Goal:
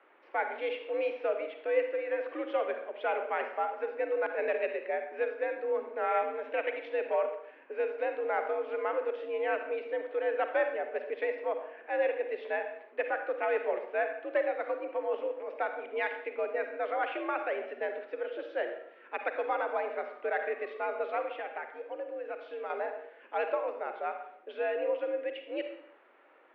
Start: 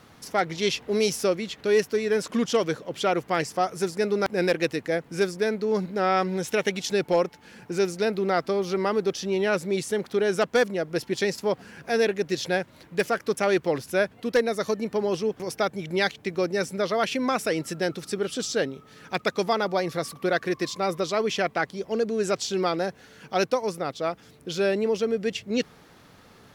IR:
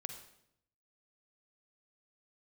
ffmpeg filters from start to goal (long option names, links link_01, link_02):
-filter_complex "[0:a]asplit=3[link_01][link_02][link_03];[link_01]afade=type=out:start_time=5.56:duration=0.02[link_04];[link_02]afreqshift=-31,afade=type=in:start_time=5.56:duration=0.02,afade=type=out:start_time=6.21:duration=0.02[link_05];[link_03]afade=type=in:start_time=6.21:duration=0.02[link_06];[link_04][link_05][link_06]amix=inputs=3:normalize=0,asettb=1/sr,asplit=3[link_07][link_08][link_09];[link_07]atrim=end=21.224[link_10];[link_08]atrim=start=21.22:end=22.7,asetpts=PTS-STARTPTS,afade=type=in:duration=0.004:curve=qsin,afade=type=out:start_time=1.476:duration=0.004:curve=qsin,acompressor=threshold=-28dB:ratio=6[link_11];[link_09]atrim=start=22.696[link_12];[link_10][link_11]acrossfade=duration=0.004:curve1=hsin:curve2=qsin[link_13];[link_13][link_12]acrossfade=duration=0.004:curve1=qsin:curve2=hsin[link_14];[1:a]atrim=start_sample=2205,afade=type=out:start_time=0.41:duration=0.01,atrim=end_sample=18522[link_15];[link_14][link_15]afir=irnorm=-1:irlink=0,highpass=frequency=290:width_type=q:width=0.5412,highpass=frequency=290:width_type=q:width=1.307,lowpass=frequency=2600:width_type=q:width=0.5176,lowpass=frequency=2600:width_type=q:width=0.7071,lowpass=frequency=2600:width_type=q:width=1.932,afreqshift=80,volume=-4dB"